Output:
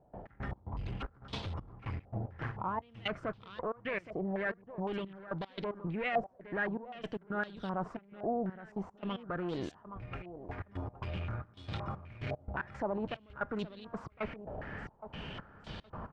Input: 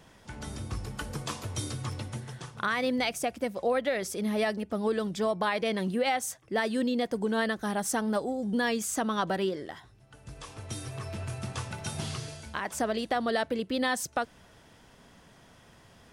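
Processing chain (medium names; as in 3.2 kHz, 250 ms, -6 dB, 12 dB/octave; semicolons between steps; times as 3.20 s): tilt EQ -1.5 dB/octave; peak limiter -23 dBFS, peak gain reduction 7 dB; reverse; compression 8:1, threshold -43 dBFS, peak gain reduction 16 dB; reverse; one-sided clip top -48.5 dBFS, bottom -36.5 dBFS; pitch shift -1.5 st; trance gate ".x.x.xxx..xx." 113 bpm -24 dB; on a send: feedback delay 818 ms, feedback 28%, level -13.5 dB; on the sum: step-sequenced low-pass 3.9 Hz 700–3700 Hz; trim +9.5 dB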